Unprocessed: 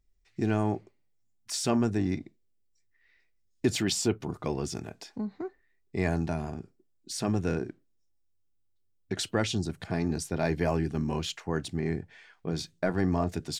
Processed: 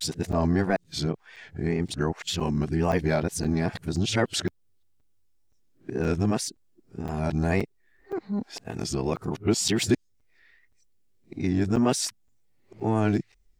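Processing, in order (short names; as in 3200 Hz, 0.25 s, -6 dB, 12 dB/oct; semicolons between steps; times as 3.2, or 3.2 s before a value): whole clip reversed; in parallel at -3 dB: compressor, threshold -39 dBFS, peak gain reduction 18 dB; on the sum: wow and flutter 93 cents; crackling interface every 0.52 s, samples 256, zero, from 0.32; gain +2.5 dB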